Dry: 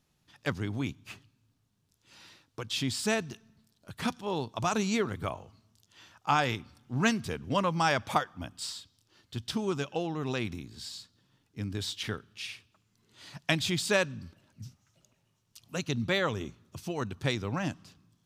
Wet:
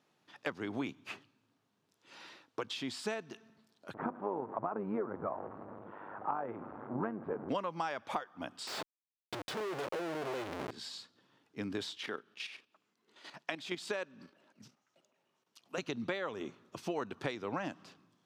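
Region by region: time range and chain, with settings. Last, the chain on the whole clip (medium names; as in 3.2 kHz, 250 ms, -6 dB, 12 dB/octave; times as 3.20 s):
3.94–7.49 s: jump at every zero crossing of -37 dBFS + low-pass 1.3 kHz 24 dB/octave + AM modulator 100 Hz, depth 50%
8.67–10.71 s: peaking EQ 1.7 kHz -7.5 dB 2.8 oct + comb 2 ms, depth 82% + Schmitt trigger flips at -48 dBFS
11.97–15.78 s: high-pass 180 Hz + level held to a coarse grid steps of 10 dB
whole clip: high-pass 330 Hz 12 dB/octave; compression 10:1, threshold -38 dBFS; low-pass 1.8 kHz 6 dB/octave; trim +6.5 dB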